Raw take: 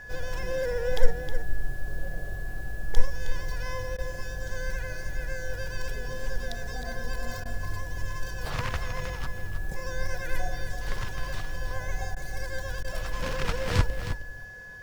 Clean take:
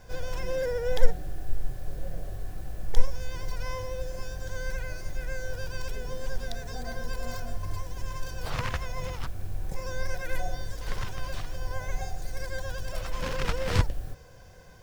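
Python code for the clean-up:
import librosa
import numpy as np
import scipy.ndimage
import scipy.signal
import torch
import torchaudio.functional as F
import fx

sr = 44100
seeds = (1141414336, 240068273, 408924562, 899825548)

y = fx.notch(x, sr, hz=1700.0, q=30.0)
y = fx.fix_interpolate(y, sr, at_s=(3.97, 7.44, 12.15, 12.83), length_ms=13.0)
y = fx.fix_echo_inverse(y, sr, delay_ms=314, level_db=-9.5)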